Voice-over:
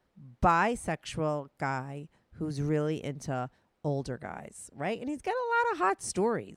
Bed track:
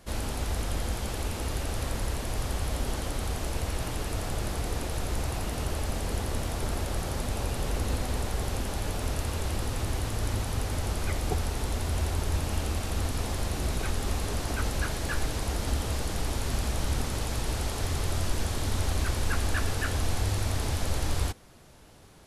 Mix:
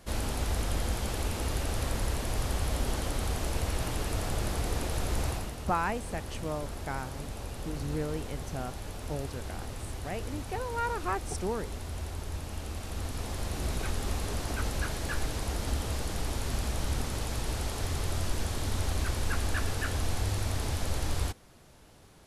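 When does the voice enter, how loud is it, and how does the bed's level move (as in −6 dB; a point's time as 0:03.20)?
5.25 s, −5.0 dB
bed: 0:05.29 0 dB
0:05.57 −8.5 dB
0:12.55 −8.5 dB
0:13.70 −2.5 dB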